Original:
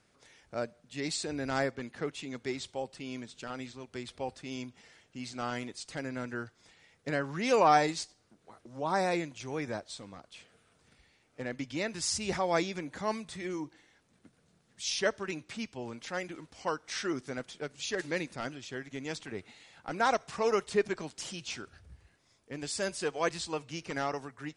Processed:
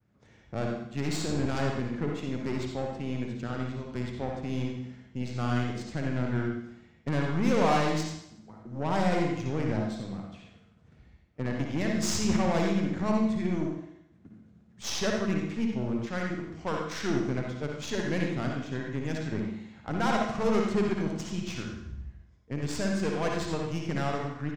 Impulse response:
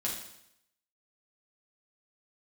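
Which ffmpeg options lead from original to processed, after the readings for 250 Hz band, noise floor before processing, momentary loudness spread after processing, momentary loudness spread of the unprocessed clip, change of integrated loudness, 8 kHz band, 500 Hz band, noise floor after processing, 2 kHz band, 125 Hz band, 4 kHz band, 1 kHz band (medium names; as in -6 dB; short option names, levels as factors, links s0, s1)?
+9.0 dB, -69 dBFS, 13 LU, 14 LU, +3.5 dB, -0.5 dB, +2.0 dB, -59 dBFS, +0.5 dB, +12.5 dB, 0.0 dB, -0.5 dB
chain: -filter_complex "[0:a]highpass=52,bass=f=250:g=13,treble=f=4000:g=4,agate=range=0.0224:threshold=0.00141:ratio=3:detection=peak,asoftclip=type=tanh:threshold=0.075,aeval=exprs='0.075*(cos(1*acos(clip(val(0)/0.075,-1,1)))-cos(1*PI/2))+0.0119*(cos(4*acos(clip(val(0)/0.075,-1,1)))-cos(4*PI/2))':c=same,aexciter=amount=1.6:drive=6.3:freq=6100,adynamicsmooth=sensitivity=3:basefreq=2300,asplit=2[s0][s1];[s1]adelay=87.46,volume=0.316,highshelf=f=4000:g=-1.97[s2];[s0][s2]amix=inputs=2:normalize=0,asplit=2[s3][s4];[1:a]atrim=start_sample=2205,lowpass=7500,adelay=56[s5];[s4][s5]afir=irnorm=-1:irlink=0,volume=0.596[s6];[s3][s6]amix=inputs=2:normalize=0"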